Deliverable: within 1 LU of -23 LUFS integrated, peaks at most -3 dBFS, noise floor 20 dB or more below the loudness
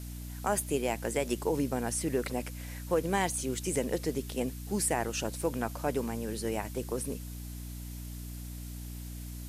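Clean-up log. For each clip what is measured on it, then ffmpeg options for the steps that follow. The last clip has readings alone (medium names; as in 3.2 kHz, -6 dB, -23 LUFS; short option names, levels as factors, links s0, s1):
hum 60 Hz; highest harmonic 300 Hz; hum level -39 dBFS; noise floor -41 dBFS; noise floor target -54 dBFS; loudness -33.5 LUFS; peak level -16.5 dBFS; loudness target -23.0 LUFS
-> -af "bandreject=f=60:t=h:w=4,bandreject=f=120:t=h:w=4,bandreject=f=180:t=h:w=4,bandreject=f=240:t=h:w=4,bandreject=f=300:t=h:w=4"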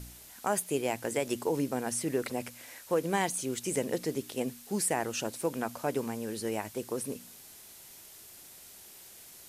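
hum not found; noise floor -52 dBFS; noise floor target -53 dBFS
-> -af "afftdn=nr=6:nf=-52"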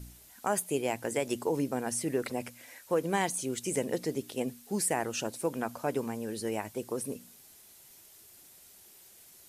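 noise floor -56 dBFS; loudness -33.0 LUFS; peak level -17.0 dBFS; loudness target -23.0 LUFS
-> -af "volume=3.16"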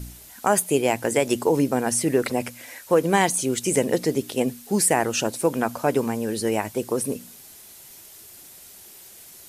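loudness -23.0 LUFS; peak level -7.0 dBFS; noise floor -46 dBFS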